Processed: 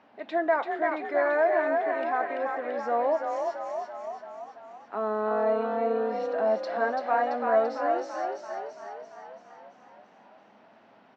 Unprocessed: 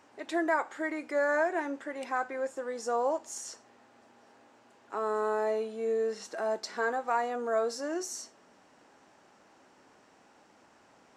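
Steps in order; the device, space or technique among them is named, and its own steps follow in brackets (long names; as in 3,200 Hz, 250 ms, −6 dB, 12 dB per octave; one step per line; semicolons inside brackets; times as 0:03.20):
frequency-shifting delay pedal into a guitar cabinet (echo with shifted repeats 337 ms, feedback 59%, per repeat +39 Hz, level −4 dB; loudspeaker in its box 110–3,900 Hz, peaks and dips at 210 Hz +9 dB, 350 Hz −4 dB, 670 Hz +7 dB)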